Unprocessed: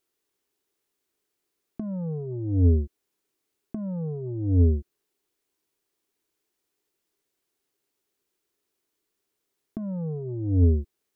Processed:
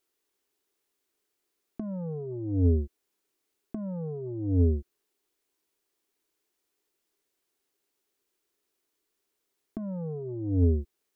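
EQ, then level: peaking EQ 120 Hz -6.5 dB 1.4 oct; 0.0 dB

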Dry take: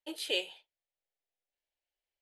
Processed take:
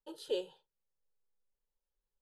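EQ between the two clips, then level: tilt EQ -3.5 dB/octave; static phaser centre 450 Hz, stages 8; 0.0 dB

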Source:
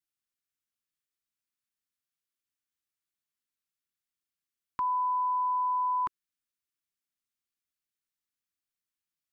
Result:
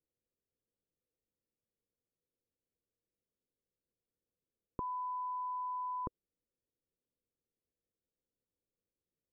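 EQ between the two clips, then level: resonant low-pass 490 Hz, resonance Q 5.4; bass shelf 330 Hz +11.5 dB; -1.5 dB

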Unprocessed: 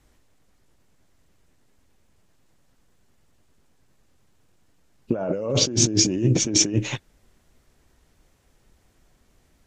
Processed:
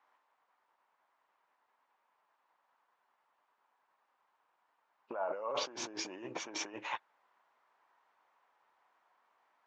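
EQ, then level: ladder band-pass 1.1 kHz, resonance 55%; +7.5 dB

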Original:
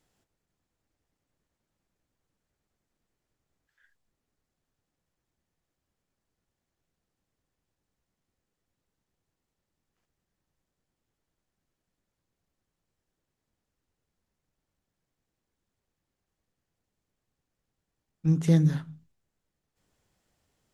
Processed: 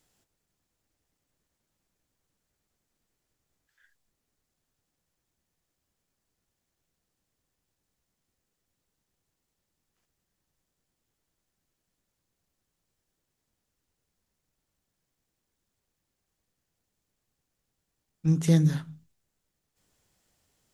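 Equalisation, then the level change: treble shelf 3.6 kHz +7.5 dB; 0.0 dB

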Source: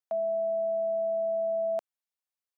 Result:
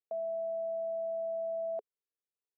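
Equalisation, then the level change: band-pass filter 430 Hz, Q 5.3; +7.0 dB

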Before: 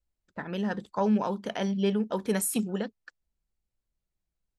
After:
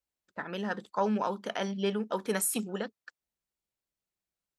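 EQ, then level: dynamic bell 1.3 kHz, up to +5 dB, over -49 dBFS, Q 3.1; high-pass 360 Hz 6 dB/octave; 0.0 dB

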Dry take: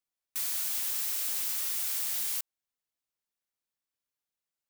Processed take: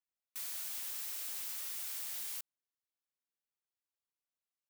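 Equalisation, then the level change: tone controls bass -4 dB, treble -2 dB; -7.5 dB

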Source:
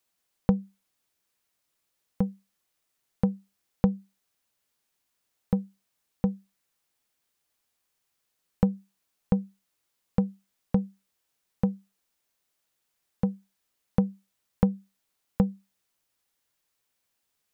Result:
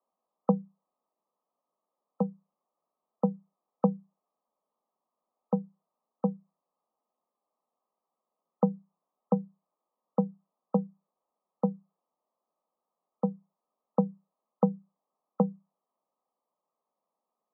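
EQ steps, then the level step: rippled Chebyshev high-pass 160 Hz, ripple 6 dB; brick-wall FIR low-pass 1.3 kHz; bass shelf 330 Hz -9 dB; +8.0 dB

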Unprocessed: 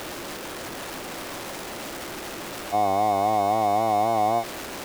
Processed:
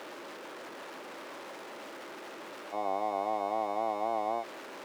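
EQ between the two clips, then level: high-pass 330 Hz 12 dB/octave; low-pass 2 kHz 6 dB/octave; band-stop 720 Hz, Q 12; -6.5 dB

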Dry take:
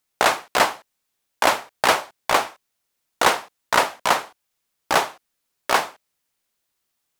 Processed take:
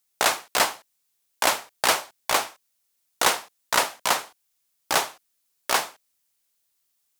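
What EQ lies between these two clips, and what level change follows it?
treble shelf 3.6 kHz +11 dB; -6.0 dB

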